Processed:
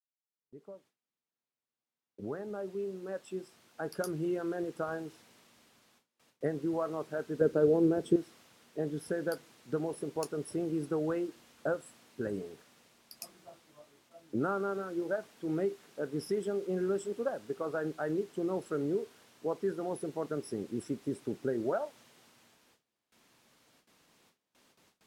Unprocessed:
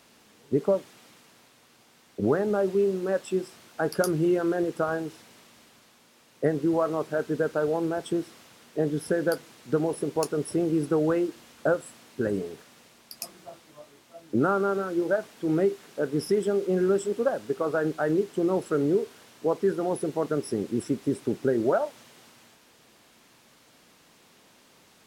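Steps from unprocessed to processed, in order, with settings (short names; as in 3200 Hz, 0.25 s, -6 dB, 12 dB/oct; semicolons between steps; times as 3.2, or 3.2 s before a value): opening faded in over 5.00 s; gate with hold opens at -47 dBFS; 7.41–8.16 resonant low shelf 590 Hz +9 dB, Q 1.5; gain -8.5 dB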